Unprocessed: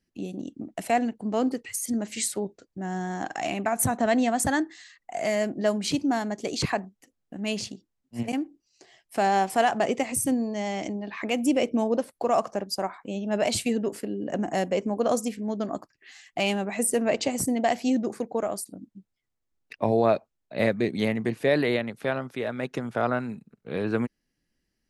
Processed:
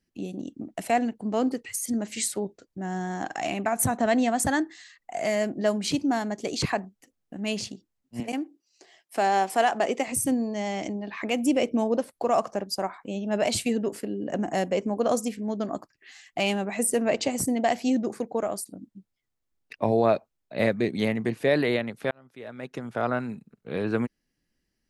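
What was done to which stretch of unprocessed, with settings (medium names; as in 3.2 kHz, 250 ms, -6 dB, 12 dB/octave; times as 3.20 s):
8.20–10.08 s: high-pass 250 Hz
22.11–23.21 s: fade in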